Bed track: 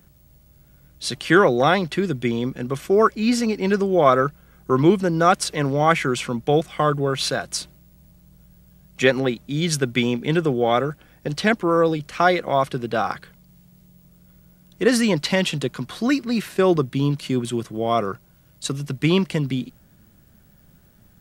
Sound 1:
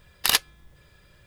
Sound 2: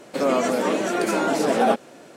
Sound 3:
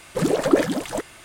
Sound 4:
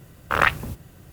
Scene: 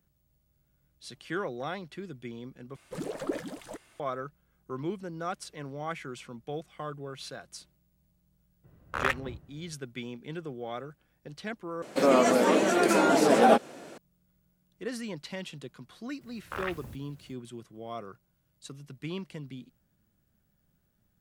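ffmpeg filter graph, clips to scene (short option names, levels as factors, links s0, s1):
-filter_complex "[4:a]asplit=2[s0][s1];[0:a]volume=0.119[s2];[s0]adynamicsmooth=sensitivity=3.5:basefreq=1600[s3];[s1]alimiter=limit=0.316:level=0:latency=1:release=41[s4];[s2]asplit=3[s5][s6][s7];[s5]atrim=end=2.764[s8];[3:a]atrim=end=1.24,asetpts=PTS-STARTPTS,volume=0.168[s9];[s6]atrim=start=3.996:end=11.824[s10];[2:a]atrim=end=2.16,asetpts=PTS-STARTPTS,volume=0.944[s11];[s7]atrim=start=13.976[s12];[s3]atrim=end=1.12,asetpts=PTS-STARTPTS,volume=0.316,afade=t=in:d=0.02,afade=t=out:st=1.1:d=0.02,adelay=8630[s13];[s4]atrim=end=1.12,asetpts=PTS-STARTPTS,volume=0.237,afade=t=in:d=0.004:c=hsin,afade=t=out:st=1.116:d=0.004:c=hsin,adelay=16210[s14];[s8][s9]acrossfade=d=0.004:c1=hsin:c2=hsin[s15];[s15][s10]acrossfade=d=0.004:c1=hsin:c2=hsin[s16];[s16][s11]acrossfade=d=0.004:c1=hsin:c2=hsin[s17];[s17][s12]acrossfade=d=0.004:c1=hsin:c2=hsin[s18];[s18][s13][s14]amix=inputs=3:normalize=0"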